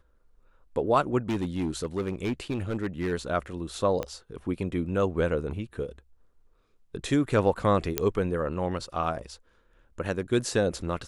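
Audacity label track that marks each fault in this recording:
1.290000	3.130000	clipped -24 dBFS
4.030000	4.030000	pop -17 dBFS
7.980000	7.980000	pop -7 dBFS

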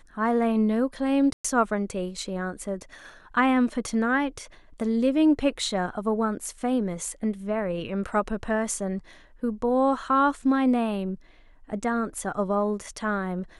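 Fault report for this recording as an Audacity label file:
1.330000	1.450000	dropout 115 ms

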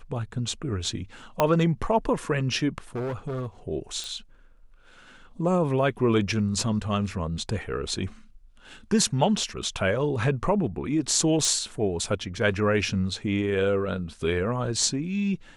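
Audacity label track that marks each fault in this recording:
1.400000	1.400000	pop -7 dBFS
2.950000	3.470000	clipped -27 dBFS
4.040000	4.040000	pop
11.450000	11.450000	pop

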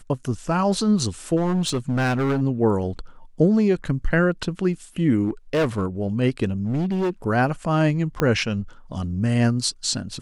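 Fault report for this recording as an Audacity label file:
1.360000	2.420000	clipped -18 dBFS
5.230000	5.860000	clipped -17 dBFS
6.510000	7.100000	clipped -19.5 dBFS
8.200000	8.200000	pop -8 dBFS

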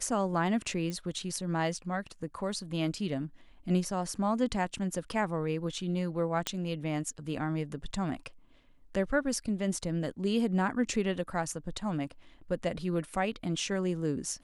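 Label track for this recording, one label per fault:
0.900000	0.900000	pop -24 dBFS
6.470000	6.470000	pop -13 dBFS

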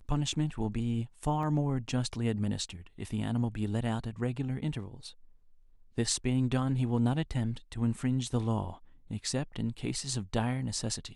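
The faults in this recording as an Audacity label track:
1.430000	1.430000	dropout 2.1 ms

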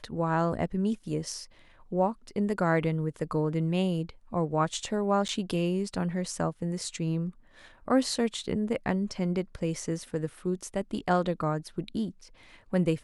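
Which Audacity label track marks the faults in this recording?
5.280000	5.290000	dropout 9.1 ms

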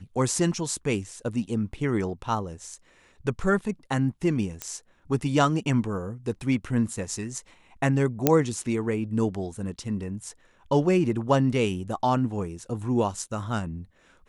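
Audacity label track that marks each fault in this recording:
4.620000	4.620000	pop -13 dBFS
8.270000	8.270000	pop -3 dBFS

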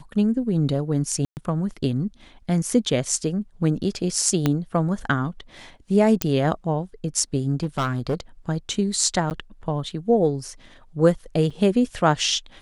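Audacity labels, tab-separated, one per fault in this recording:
1.250000	1.370000	dropout 119 ms
4.460000	4.460000	pop -7 dBFS
6.220000	6.220000	pop -3 dBFS
7.630000	8.200000	clipped -18.5 dBFS
9.300000	9.310000	dropout 9.5 ms
11.500000	11.510000	dropout 5.1 ms

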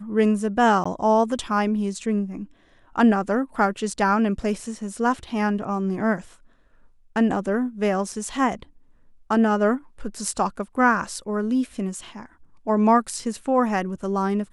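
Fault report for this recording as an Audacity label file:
0.840000	0.850000	dropout 15 ms

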